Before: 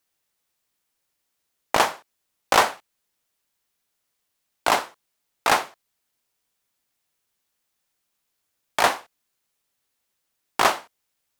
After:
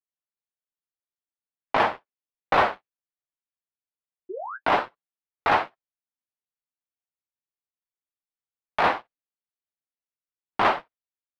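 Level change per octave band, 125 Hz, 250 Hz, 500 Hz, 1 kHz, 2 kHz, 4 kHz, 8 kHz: +2.0 dB, +0.5 dB, -0.5 dB, -0.5 dB, -2.0 dB, -8.0 dB, under -20 dB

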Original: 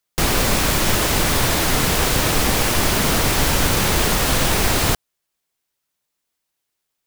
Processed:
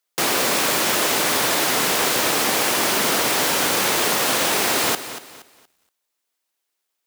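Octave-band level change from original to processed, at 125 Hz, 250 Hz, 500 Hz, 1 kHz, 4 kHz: -15.5 dB, -4.5 dB, -0.5 dB, 0.0 dB, +0.5 dB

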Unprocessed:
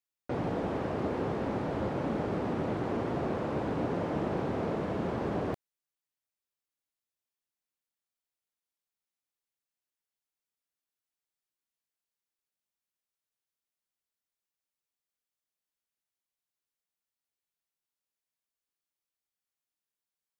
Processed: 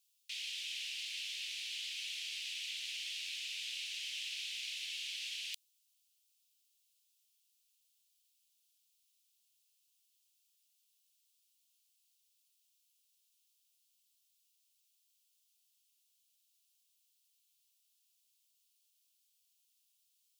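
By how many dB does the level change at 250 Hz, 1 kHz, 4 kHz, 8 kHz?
under -40 dB, under -40 dB, +15.5 dB, no reading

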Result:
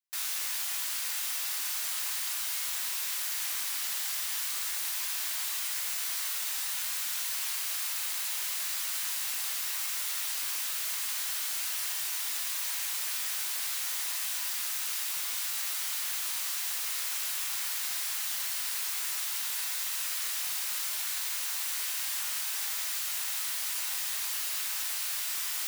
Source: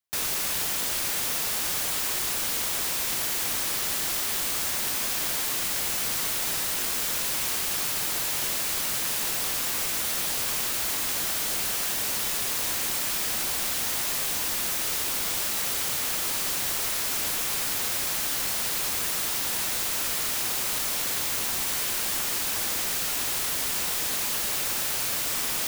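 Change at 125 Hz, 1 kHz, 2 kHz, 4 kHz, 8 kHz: under -40 dB, -9.5 dB, -6.0 dB, -5.0 dB, -5.0 dB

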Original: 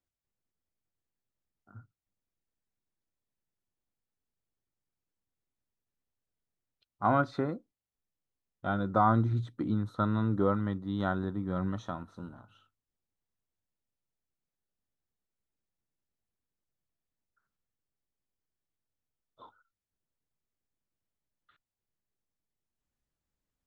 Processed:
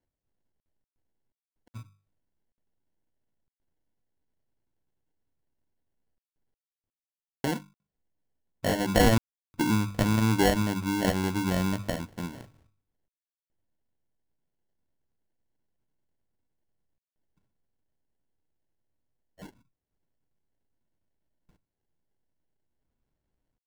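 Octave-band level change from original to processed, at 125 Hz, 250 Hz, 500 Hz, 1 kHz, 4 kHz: +2.5 dB, +4.5 dB, +4.0 dB, -1.0 dB, +17.0 dB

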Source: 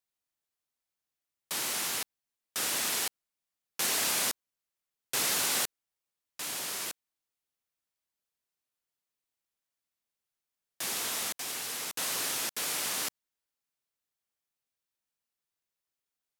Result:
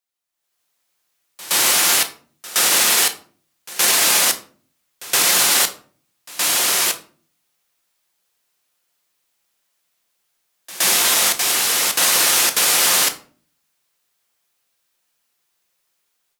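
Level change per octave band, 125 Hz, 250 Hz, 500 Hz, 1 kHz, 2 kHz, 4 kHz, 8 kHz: +11.0 dB, +12.0 dB, +14.5 dB, +16.0 dB, +16.0 dB, +16.5 dB, +16.0 dB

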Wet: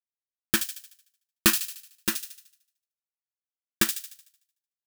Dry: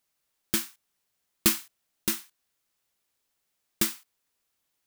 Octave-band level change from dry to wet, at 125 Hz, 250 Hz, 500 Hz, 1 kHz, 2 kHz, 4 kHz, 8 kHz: +1.5 dB, +1.5 dB, +2.0 dB, +5.5 dB, +7.0 dB, +3.5 dB, +2.5 dB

